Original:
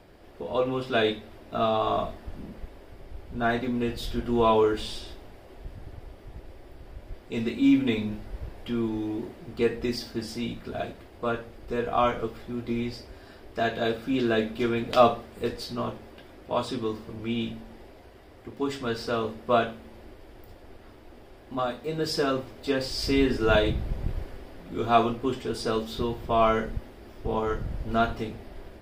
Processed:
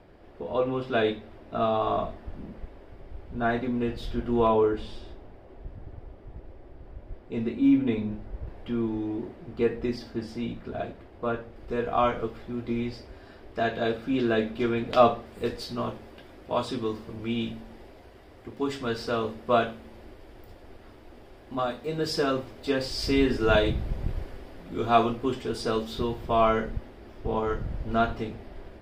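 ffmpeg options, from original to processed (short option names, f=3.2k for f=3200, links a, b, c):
-af "asetnsamples=n=441:p=0,asendcmd='4.47 lowpass f 1100;8.47 lowpass f 1800;11.56 lowpass f 3600;15.26 lowpass f 9800;26.41 lowpass f 4100',lowpass=f=2.2k:p=1"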